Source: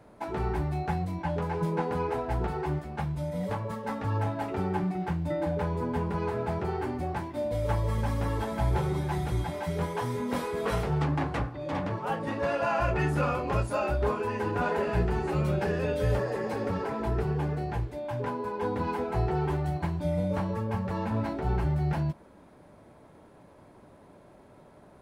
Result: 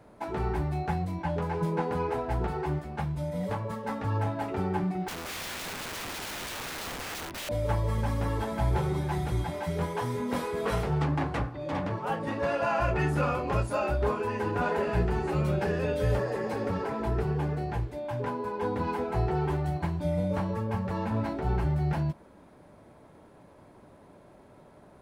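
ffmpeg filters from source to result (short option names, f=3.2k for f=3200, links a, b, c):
-filter_complex "[0:a]asettb=1/sr,asplit=3[a][b][c];[a]atrim=end=5.084[d];[b]atrim=start=5.08:end=7.49,asetpts=PTS-STARTPTS,afade=t=in:d=0.004:c=qsin,afade=t=out:st=2.406:d=0.004:c=qsin,aeval=exprs='(mod(42.2*val(0)+1,2)-1)/42.2':c=same[e];[c]atrim=start=7.486[f];[d][e]acrossfade=d=0.004:c1=hsin:c2=qsin[g];[g][f]acrossfade=d=0.004:c1=qsin:c2=hsin"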